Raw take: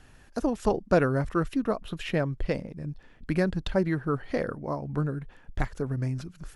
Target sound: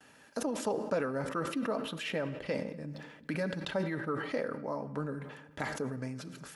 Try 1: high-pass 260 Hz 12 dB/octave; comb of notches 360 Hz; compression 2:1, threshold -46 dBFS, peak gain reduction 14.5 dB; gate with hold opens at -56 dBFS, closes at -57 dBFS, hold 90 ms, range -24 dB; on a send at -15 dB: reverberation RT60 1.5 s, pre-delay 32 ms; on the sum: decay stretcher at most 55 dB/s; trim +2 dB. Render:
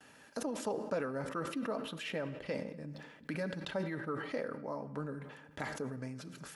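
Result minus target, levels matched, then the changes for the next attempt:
compression: peak gain reduction +3.5 dB
change: compression 2:1, threshold -38.5 dBFS, peak gain reduction 11 dB

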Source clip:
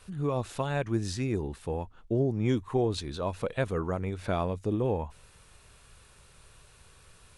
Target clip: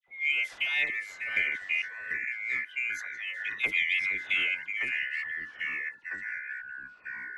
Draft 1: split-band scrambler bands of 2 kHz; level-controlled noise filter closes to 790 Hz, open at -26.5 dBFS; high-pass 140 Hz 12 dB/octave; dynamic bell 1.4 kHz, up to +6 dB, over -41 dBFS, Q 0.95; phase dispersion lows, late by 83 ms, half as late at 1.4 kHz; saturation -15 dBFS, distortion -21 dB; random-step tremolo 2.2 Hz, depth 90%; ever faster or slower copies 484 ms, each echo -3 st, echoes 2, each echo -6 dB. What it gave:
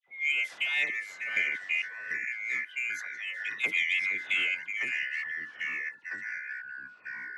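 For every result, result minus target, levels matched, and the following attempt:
saturation: distortion +11 dB; 125 Hz band -2.5 dB
split-band scrambler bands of 2 kHz; level-controlled noise filter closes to 790 Hz, open at -26.5 dBFS; high-pass 140 Hz 12 dB/octave; dynamic bell 1.4 kHz, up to +6 dB, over -41 dBFS, Q 0.95; phase dispersion lows, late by 83 ms, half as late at 1.4 kHz; saturation -8.5 dBFS, distortion -32 dB; random-step tremolo 2.2 Hz, depth 90%; ever faster or slower copies 484 ms, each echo -3 st, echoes 2, each echo -6 dB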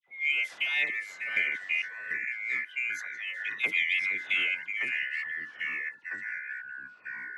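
125 Hz band -3.0 dB
split-band scrambler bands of 2 kHz; level-controlled noise filter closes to 790 Hz, open at -26.5 dBFS; dynamic bell 1.4 kHz, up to +6 dB, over -41 dBFS, Q 0.95; phase dispersion lows, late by 83 ms, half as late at 1.4 kHz; saturation -8.5 dBFS, distortion -32 dB; random-step tremolo 2.2 Hz, depth 90%; ever faster or slower copies 484 ms, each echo -3 st, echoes 2, each echo -6 dB

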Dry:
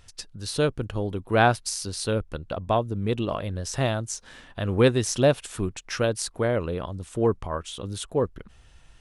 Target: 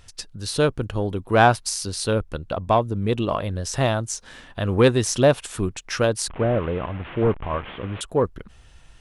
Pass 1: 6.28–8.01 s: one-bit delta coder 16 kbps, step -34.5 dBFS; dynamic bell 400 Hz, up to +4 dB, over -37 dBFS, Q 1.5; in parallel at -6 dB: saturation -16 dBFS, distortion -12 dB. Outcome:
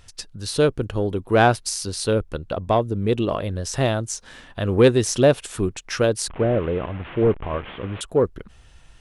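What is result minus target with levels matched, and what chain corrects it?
1 kHz band -3.0 dB
6.28–8.01 s: one-bit delta coder 16 kbps, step -34.5 dBFS; dynamic bell 980 Hz, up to +4 dB, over -37 dBFS, Q 1.5; in parallel at -6 dB: saturation -16 dBFS, distortion -12 dB

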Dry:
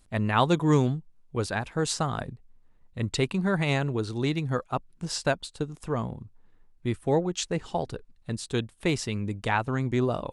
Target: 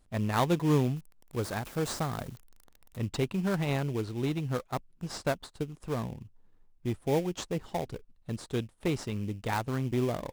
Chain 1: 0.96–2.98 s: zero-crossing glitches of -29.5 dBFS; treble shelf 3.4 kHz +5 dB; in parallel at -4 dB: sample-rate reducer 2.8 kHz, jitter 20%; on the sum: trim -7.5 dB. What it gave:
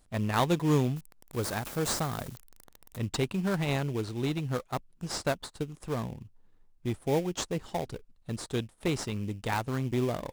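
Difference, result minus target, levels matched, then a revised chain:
8 kHz band +4.5 dB
0.96–2.98 s: zero-crossing glitches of -29.5 dBFS; treble shelf 3.4 kHz -2.5 dB; in parallel at -4 dB: sample-rate reducer 2.8 kHz, jitter 20%; on the sum: trim -7.5 dB

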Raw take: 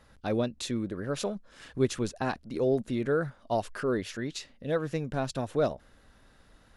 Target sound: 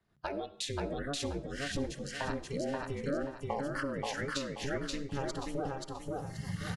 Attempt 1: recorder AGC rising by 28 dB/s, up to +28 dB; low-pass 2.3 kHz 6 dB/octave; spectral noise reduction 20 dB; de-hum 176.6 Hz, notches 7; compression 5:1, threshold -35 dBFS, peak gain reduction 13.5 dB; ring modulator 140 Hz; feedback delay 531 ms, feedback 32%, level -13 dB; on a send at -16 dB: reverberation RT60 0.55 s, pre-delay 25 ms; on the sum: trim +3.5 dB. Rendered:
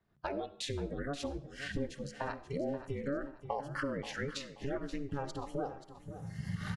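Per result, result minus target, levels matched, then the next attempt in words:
echo-to-direct -9.5 dB; 8 kHz band -4.5 dB
recorder AGC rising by 28 dB/s, up to +28 dB; low-pass 2.3 kHz 6 dB/octave; spectral noise reduction 20 dB; de-hum 176.6 Hz, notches 7; compression 5:1, threshold -35 dBFS, peak gain reduction 13.5 dB; ring modulator 140 Hz; feedback delay 531 ms, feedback 32%, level -2 dB; on a send at -16 dB: reverberation RT60 0.55 s, pre-delay 25 ms; on the sum: trim +3.5 dB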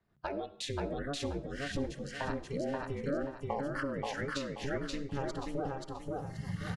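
8 kHz band -4.5 dB
recorder AGC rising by 28 dB/s, up to +28 dB; low-pass 6.3 kHz 6 dB/octave; spectral noise reduction 20 dB; de-hum 176.6 Hz, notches 7; compression 5:1, threshold -35 dBFS, peak gain reduction 13.5 dB; ring modulator 140 Hz; feedback delay 531 ms, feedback 32%, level -2 dB; on a send at -16 dB: reverberation RT60 0.55 s, pre-delay 25 ms; on the sum: trim +3.5 dB

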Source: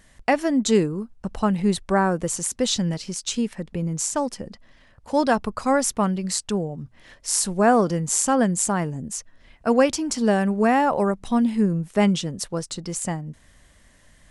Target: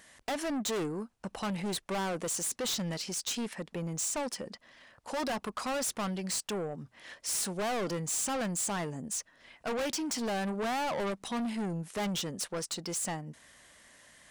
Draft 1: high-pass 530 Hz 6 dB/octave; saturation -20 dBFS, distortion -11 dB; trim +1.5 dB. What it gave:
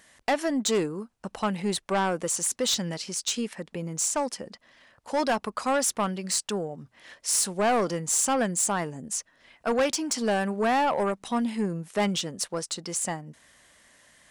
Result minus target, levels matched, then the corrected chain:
saturation: distortion -8 dB
high-pass 530 Hz 6 dB/octave; saturation -32 dBFS, distortion -4 dB; trim +1.5 dB

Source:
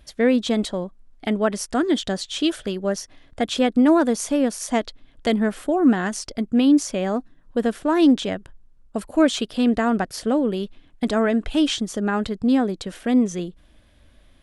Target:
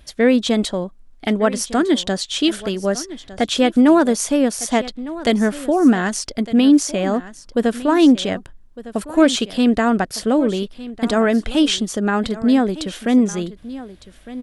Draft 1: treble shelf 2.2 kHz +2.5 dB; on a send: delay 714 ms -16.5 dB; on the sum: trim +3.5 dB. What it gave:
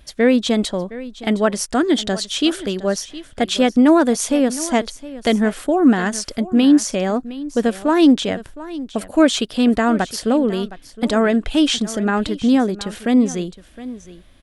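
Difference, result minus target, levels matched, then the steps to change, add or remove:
echo 493 ms early
change: delay 1207 ms -16.5 dB

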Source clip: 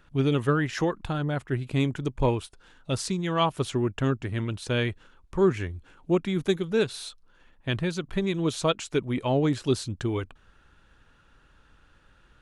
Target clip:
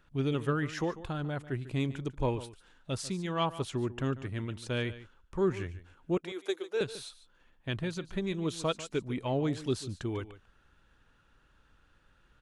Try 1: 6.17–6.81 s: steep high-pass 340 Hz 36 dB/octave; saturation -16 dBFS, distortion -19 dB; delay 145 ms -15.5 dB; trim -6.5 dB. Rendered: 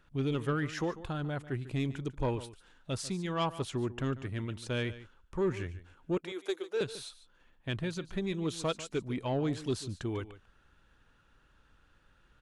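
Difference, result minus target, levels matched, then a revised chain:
saturation: distortion +18 dB
6.17–6.81 s: steep high-pass 340 Hz 36 dB/octave; saturation -5.5 dBFS, distortion -37 dB; delay 145 ms -15.5 dB; trim -6.5 dB

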